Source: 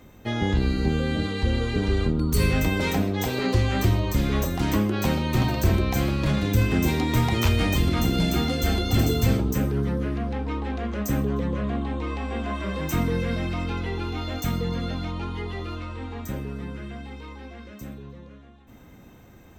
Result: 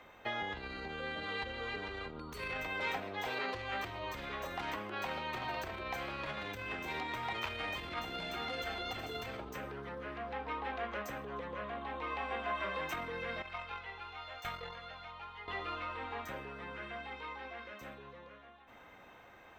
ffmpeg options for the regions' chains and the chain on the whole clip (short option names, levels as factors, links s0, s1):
-filter_complex "[0:a]asettb=1/sr,asplit=3[s0][s1][s2];[s0]atrim=end=13.424[s3];[s1]atrim=start=13.42:end=15.48,asetpts=PTS-STARTPTS,afade=t=in:d=0.004:c=qsin,afade=t=out:st=2.056:d=0.004:c=qsin,equalizer=f=290:t=o:w=0.93:g=-14.5,agate=range=0.316:threshold=0.0355:ratio=16:release=100:detection=peak[s4];[s2]atrim=start=15.476[s5];[s3][s4]acrossfade=d=0.004:c1=hsin:c2=qsin[s6];[s6][s5]acrossfade=d=0.004:c1=qsin:c2=hsin,alimiter=limit=0.133:level=0:latency=1:release=40,acompressor=threshold=0.0355:ratio=6,acrossover=split=550 3500:gain=0.0891 1 0.126[s7][s8][s9];[s7][s8][s9]amix=inputs=3:normalize=0,volume=1.33"